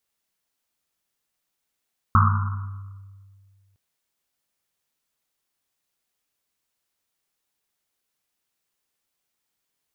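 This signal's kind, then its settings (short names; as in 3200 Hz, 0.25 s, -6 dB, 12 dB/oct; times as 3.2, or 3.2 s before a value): Risset drum length 1.61 s, pitch 98 Hz, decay 2.08 s, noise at 1200 Hz, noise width 400 Hz, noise 35%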